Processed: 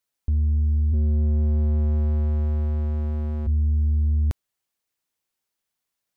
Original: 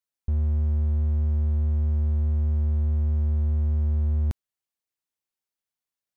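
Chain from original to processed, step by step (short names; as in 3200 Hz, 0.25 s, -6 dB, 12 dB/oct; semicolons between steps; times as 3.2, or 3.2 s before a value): 0.92–3.46 HPF 46 Hz -> 140 Hz 12 dB/oct; soft clip -25 dBFS, distortion -13 dB; gain +7.5 dB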